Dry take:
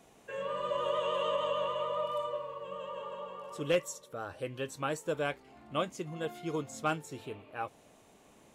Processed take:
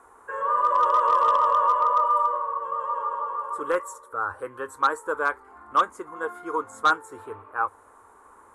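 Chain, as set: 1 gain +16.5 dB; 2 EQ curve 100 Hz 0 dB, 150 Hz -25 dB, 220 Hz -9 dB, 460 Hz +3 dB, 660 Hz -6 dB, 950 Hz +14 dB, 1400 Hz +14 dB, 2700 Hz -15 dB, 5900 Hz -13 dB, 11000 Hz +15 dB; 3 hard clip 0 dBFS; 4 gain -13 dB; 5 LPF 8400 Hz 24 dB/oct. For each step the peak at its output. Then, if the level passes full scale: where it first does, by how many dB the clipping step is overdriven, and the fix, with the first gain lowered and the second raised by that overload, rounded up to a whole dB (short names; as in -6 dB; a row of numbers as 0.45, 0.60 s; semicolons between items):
-2.0, +8.5, 0.0, -13.0, -12.0 dBFS; step 2, 8.5 dB; step 1 +7.5 dB, step 4 -4 dB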